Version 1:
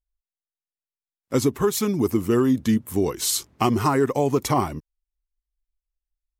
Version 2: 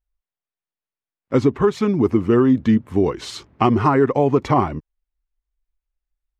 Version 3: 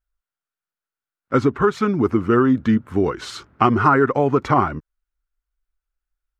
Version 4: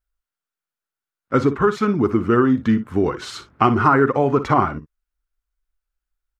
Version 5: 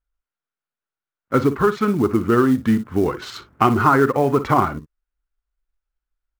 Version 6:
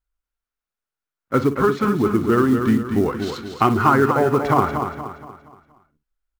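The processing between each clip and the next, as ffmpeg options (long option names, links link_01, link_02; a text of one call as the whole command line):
ffmpeg -i in.wav -af "lowpass=2500,volume=4.5dB" out.wav
ffmpeg -i in.wav -af "equalizer=frequency=1400:width=3.2:gain=12.5,volume=-1.5dB" out.wav
ffmpeg -i in.wav -af "aecho=1:1:44|58:0.126|0.188" out.wav
ffmpeg -i in.wav -af "adynamicsmooth=sensitivity=7.5:basefreq=3600,acrusher=bits=7:mode=log:mix=0:aa=0.000001" out.wav
ffmpeg -i in.wav -af "aecho=1:1:236|472|708|944|1180:0.447|0.183|0.0751|0.0308|0.0126,volume=-1dB" out.wav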